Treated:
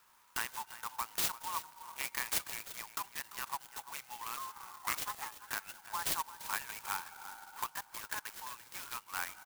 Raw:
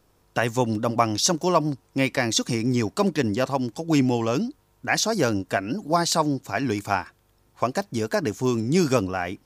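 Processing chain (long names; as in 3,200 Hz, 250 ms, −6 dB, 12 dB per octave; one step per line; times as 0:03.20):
on a send at −22.5 dB: comb filter 1.4 ms, depth 84% + convolution reverb RT60 3.7 s, pre-delay 3 ms
on the sum: downward compressor 12 to 1, threshold −32 dBFS, peak gain reduction 18.5 dB
elliptic low-pass filter 7,100 Hz
0:04.36–0:05.38: ring modulation 910 Hz → 270 Hz
in parallel at +1 dB: output level in coarse steps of 13 dB
on the sum: elliptic high-pass filter 900 Hz, stop band 40 dB
single-tap delay 342 ms −14.5 dB
converter with an unsteady clock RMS 0.072 ms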